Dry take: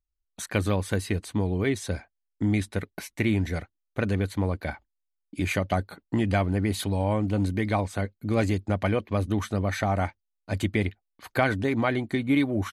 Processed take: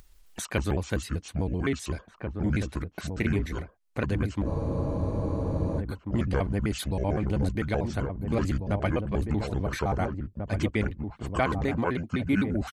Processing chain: trilling pitch shifter -6.5 st, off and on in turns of 64 ms; outdoor echo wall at 290 m, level -6 dB; upward compressor, threshold -29 dBFS; spectral freeze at 4.49, 1.31 s; gain -2 dB

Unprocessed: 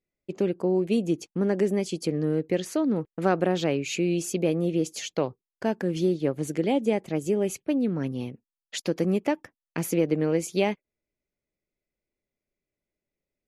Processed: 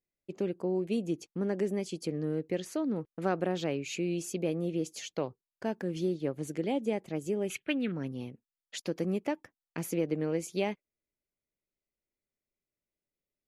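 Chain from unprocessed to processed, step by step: 7.5–7.92 band shelf 2200 Hz +15 dB; gain -7 dB

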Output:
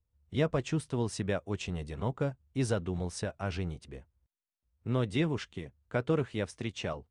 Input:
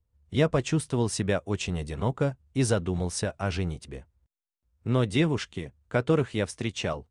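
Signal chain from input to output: high shelf 7600 Hz -8 dB; gain -5.5 dB

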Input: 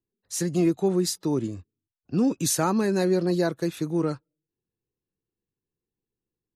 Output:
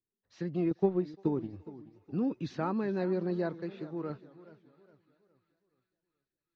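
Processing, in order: Bessel low-pass 2500 Hz, order 8; 0.71–1.53 transient shaper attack +7 dB, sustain -10 dB; 3.59–4.1 low shelf 340 Hz -7.5 dB; thinning echo 0.345 s, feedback 71%, high-pass 820 Hz, level -23.5 dB; warbling echo 0.421 s, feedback 38%, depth 182 cents, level -17 dB; gain -8.5 dB

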